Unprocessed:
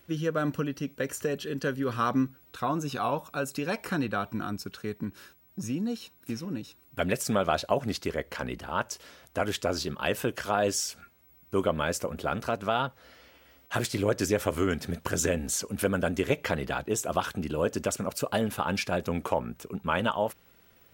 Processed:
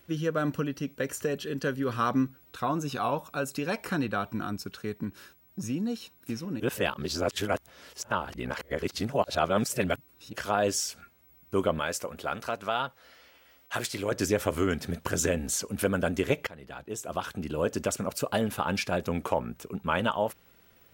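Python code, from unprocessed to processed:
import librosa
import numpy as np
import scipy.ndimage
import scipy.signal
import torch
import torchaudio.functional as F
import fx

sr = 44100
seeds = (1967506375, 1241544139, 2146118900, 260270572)

y = fx.low_shelf(x, sr, hz=430.0, db=-9.0, at=(11.79, 14.12))
y = fx.edit(y, sr, fx.reverse_span(start_s=6.6, length_s=3.73),
    fx.fade_in_from(start_s=16.47, length_s=1.27, floor_db=-22.0), tone=tone)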